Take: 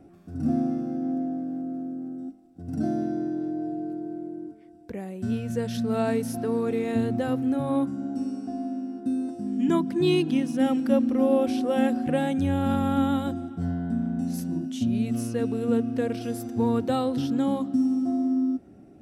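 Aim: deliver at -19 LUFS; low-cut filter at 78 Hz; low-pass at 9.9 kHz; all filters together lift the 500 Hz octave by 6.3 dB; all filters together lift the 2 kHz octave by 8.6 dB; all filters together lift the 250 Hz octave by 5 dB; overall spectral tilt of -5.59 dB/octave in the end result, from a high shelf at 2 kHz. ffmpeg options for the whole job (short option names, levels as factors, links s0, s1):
-af "highpass=78,lowpass=9900,equalizer=f=250:t=o:g=4,equalizer=f=500:t=o:g=5.5,highshelf=f=2000:g=8,equalizer=f=2000:t=o:g=6,volume=1.33"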